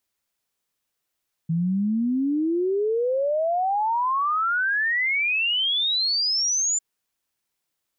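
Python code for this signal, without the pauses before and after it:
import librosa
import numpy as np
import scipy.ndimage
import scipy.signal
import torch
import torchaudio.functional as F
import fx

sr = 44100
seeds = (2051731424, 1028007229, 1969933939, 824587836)

y = fx.ess(sr, length_s=5.3, from_hz=160.0, to_hz=7200.0, level_db=-20.0)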